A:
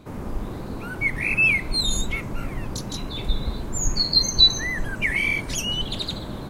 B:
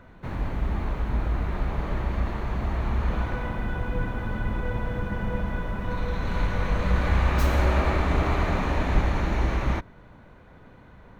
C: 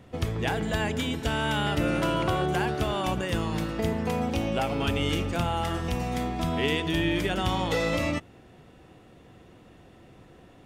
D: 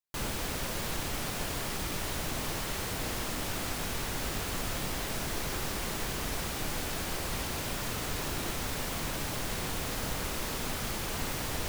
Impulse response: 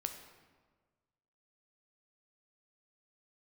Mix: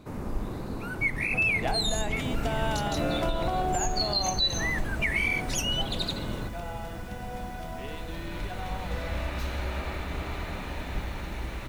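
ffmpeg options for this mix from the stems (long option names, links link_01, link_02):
-filter_complex "[0:a]volume=-2.5dB[link_01];[1:a]equalizer=frequency=3400:width_type=o:width=1.2:gain=8.5,bandreject=frequency=1100:width=16,adelay=2000,volume=-11dB[link_02];[2:a]equalizer=frequency=710:width_type=o:width=0.44:gain=12,adelay=1200,volume=-5dB,afade=type=out:start_time=4.38:duration=0.51:silence=0.266073[link_03];[3:a]aecho=1:1:5.5:0.78,adelay=2100,volume=-19.5dB[link_04];[link_01][link_02][link_03][link_04]amix=inputs=4:normalize=0,bandreject=frequency=3200:width=22,alimiter=limit=-17.5dB:level=0:latency=1:release=156"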